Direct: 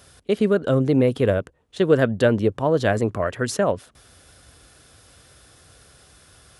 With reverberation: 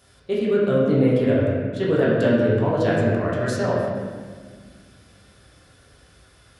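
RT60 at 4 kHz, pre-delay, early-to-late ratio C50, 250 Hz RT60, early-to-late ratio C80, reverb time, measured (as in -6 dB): 1.2 s, 8 ms, -1.0 dB, 2.5 s, 1.0 dB, 1.7 s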